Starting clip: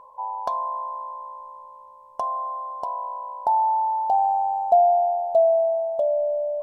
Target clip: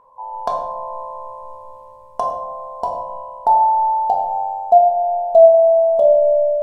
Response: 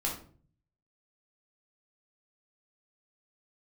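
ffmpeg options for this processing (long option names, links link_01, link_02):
-filter_complex "[0:a]dynaudnorm=framelen=120:gausssize=5:maxgain=13.5dB,asplit=2[link_01][link_02];[1:a]atrim=start_sample=2205,asetrate=23814,aresample=44100,lowshelf=frequency=230:gain=7[link_03];[link_02][link_03]afir=irnorm=-1:irlink=0,volume=-5dB[link_04];[link_01][link_04]amix=inputs=2:normalize=0,volume=-9dB"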